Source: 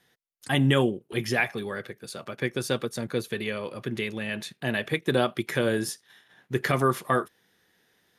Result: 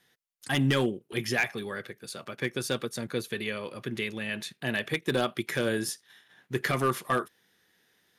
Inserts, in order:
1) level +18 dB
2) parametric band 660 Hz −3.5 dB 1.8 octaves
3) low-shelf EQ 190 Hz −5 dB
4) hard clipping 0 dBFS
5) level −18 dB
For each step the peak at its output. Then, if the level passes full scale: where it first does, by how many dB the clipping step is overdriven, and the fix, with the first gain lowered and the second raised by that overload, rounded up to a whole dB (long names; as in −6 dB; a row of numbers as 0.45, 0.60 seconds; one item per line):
+9.0, +8.0, +7.5, 0.0, −18.0 dBFS
step 1, 7.5 dB
step 1 +10 dB, step 5 −10 dB